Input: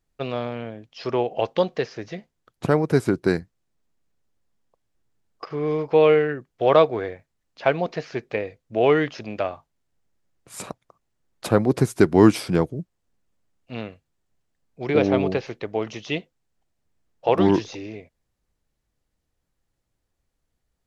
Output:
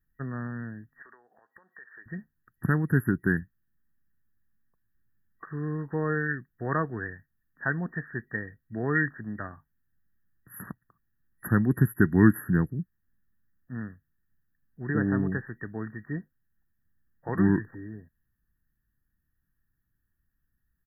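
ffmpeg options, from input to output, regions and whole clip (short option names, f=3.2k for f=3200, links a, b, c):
-filter_complex "[0:a]asettb=1/sr,asplit=3[a][b][c];[a]atrim=end=1.024[d];[b]atrim=start=1.02:end=2.06,asetpts=PTS-STARTPTS,afade=t=in:d=0.004:c=qsin,afade=t=out:st=1.036:d=0.004:c=qsin,highpass=720,acompressor=threshold=-41dB:ratio=12:attack=3.2:release=140:knee=1:detection=peak[e];[c]atrim=start=2.056[f];[d][e]acrossfade=d=0.004:c1=hsin:c2=qsin[g];[g][f]acrossfade=d=0.004:c1=qsin:c2=hsin,afftfilt=real='re*(1-between(b*sr/4096,1900,11000))':imag='im*(1-between(b*sr/4096,1900,11000))':win_size=4096:overlap=0.75,firequalizer=gain_entry='entry(210,0);entry(550,-22);entry(1700,5)':delay=0.05:min_phase=1"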